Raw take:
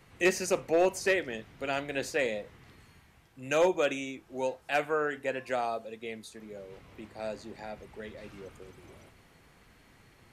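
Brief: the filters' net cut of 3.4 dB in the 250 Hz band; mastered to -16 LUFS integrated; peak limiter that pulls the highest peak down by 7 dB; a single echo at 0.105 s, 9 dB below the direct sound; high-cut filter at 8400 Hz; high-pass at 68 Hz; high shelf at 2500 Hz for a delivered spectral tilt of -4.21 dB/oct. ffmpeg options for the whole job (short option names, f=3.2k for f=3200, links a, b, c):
-af "highpass=68,lowpass=8.4k,equalizer=f=250:t=o:g=-5.5,highshelf=f=2.5k:g=-7,alimiter=level_in=0.5dB:limit=-24dB:level=0:latency=1,volume=-0.5dB,aecho=1:1:105:0.355,volume=21dB"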